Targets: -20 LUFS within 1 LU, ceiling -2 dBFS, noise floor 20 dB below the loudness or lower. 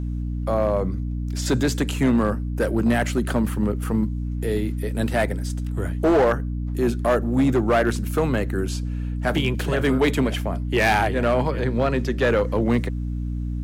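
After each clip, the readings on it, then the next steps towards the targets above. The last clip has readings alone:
clipped 1.6%; flat tops at -13.5 dBFS; hum 60 Hz; harmonics up to 300 Hz; hum level -24 dBFS; loudness -22.5 LUFS; peak -13.5 dBFS; loudness target -20.0 LUFS
-> clip repair -13.5 dBFS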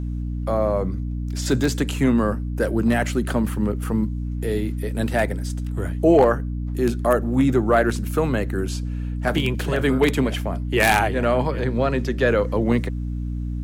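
clipped 0.0%; hum 60 Hz; harmonics up to 300 Hz; hum level -24 dBFS
-> notches 60/120/180/240/300 Hz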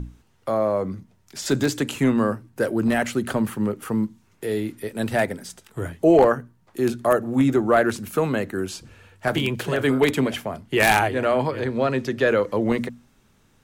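hum none; loudness -22.5 LUFS; peak -3.5 dBFS; loudness target -20.0 LUFS
-> gain +2.5 dB; limiter -2 dBFS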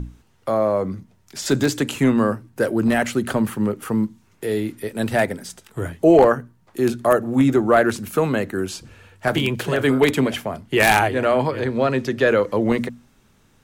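loudness -20.0 LUFS; peak -2.0 dBFS; noise floor -58 dBFS

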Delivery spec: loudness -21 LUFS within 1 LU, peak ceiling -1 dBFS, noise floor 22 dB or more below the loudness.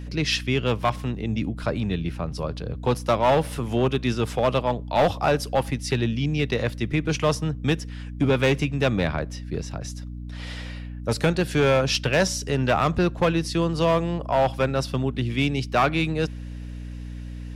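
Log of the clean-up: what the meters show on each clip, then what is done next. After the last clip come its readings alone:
clipped 0.9%; flat tops at -13.5 dBFS; hum 60 Hz; harmonics up to 300 Hz; hum level -32 dBFS; loudness -24.0 LUFS; peak -13.5 dBFS; loudness target -21.0 LUFS
-> clip repair -13.5 dBFS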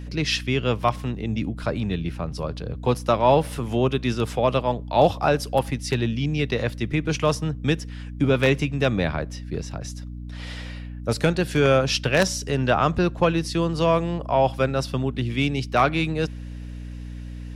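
clipped 0.0%; hum 60 Hz; harmonics up to 240 Hz; hum level -32 dBFS
-> de-hum 60 Hz, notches 4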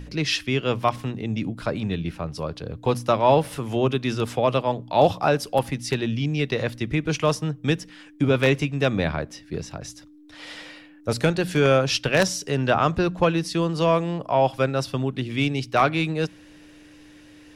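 hum none; loudness -23.5 LUFS; peak -4.5 dBFS; loudness target -21.0 LUFS
-> gain +2.5 dB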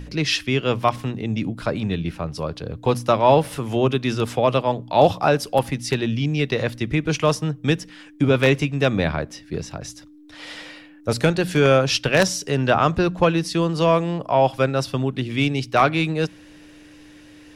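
loudness -21.0 LUFS; peak -2.0 dBFS; noise floor -46 dBFS

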